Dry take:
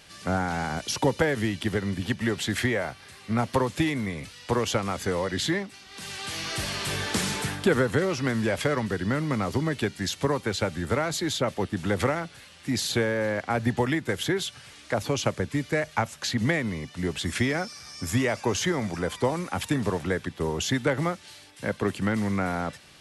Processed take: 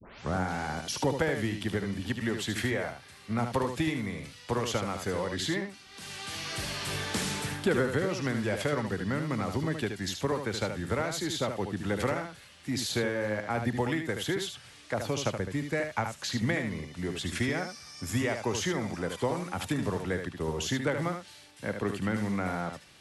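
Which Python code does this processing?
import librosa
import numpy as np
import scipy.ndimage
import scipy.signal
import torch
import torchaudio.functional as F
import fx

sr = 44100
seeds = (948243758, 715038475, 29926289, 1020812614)

p1 = fx.tape_start_head(x, sr, length_s=0.34)
p2 = p1 + fx.echo_single(p1, sr, ms=75, db=-7.0, dry=0)
y = F.gain(torch.from_numpy(p2), -5.0).numpy()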